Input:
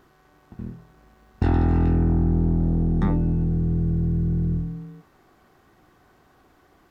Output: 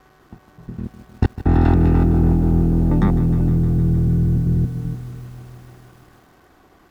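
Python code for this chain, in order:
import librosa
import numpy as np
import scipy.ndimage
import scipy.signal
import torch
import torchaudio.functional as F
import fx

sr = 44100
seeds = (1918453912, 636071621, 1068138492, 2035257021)

y = fx.block_reorder(x, sr, ms=97.0, group=3)
y = fx.echo_crushed(y, sr, ms=154, feedback_pct=80, bits=8, wet_db=-14.0)
y = y * 10.0 ** (5.5 / 20.0)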